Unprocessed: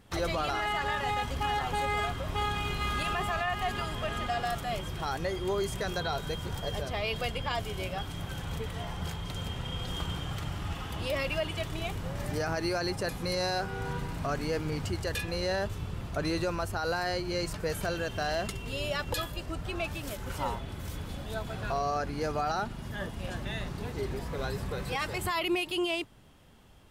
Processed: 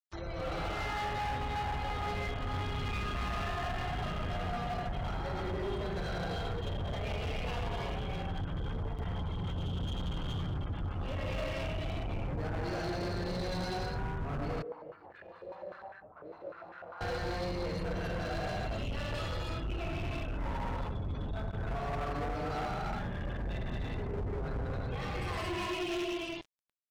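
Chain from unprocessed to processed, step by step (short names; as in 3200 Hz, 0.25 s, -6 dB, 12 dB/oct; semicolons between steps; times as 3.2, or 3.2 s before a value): tilt -1.5 dB/oct; feedback echo 84 ms, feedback 46%, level -16.5 dB; non-linear reverb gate 0.43 s flat, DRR -7.5 dB; crossover distortion -33.5 dBFS; spectral gate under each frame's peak -30 dB strong; AGC gain up to 11.5 dB; hard clip -16.5 dBFS, distortion -7 dB; limiter -25.5 dBFS, peak gain reduction 31.5 dB; 14.62–17.01 stepped band-pass 10 Hz 480–1600 Hz; gain -6.5 dB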